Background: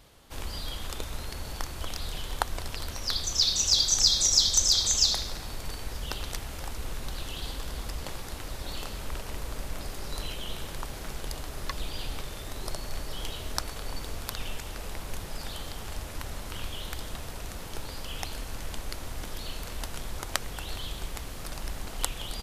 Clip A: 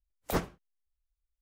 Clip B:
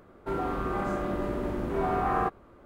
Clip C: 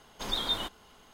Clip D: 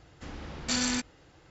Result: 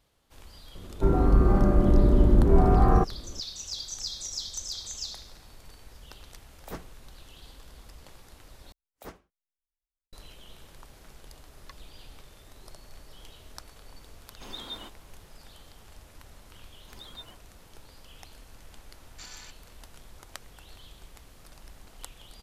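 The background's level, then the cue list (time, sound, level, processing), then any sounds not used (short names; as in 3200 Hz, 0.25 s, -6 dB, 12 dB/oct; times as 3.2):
background -13.5 dB
0.75 add B -0.5 dB + tilt -4.5 dB/oct
6.38 add A -10 dB
8.72 replace with A -13.5 dB + bell 140 Hz -10 dB 0.66 oct
14.21 add C -9.5 dB + bell 300 Hz +4.5 dB 1 oct
16.68 add C -13.5 dB + per-bin expansion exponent 2
18.5 add D -16 dB + steep high-pass 700 Hz 72 dB/oct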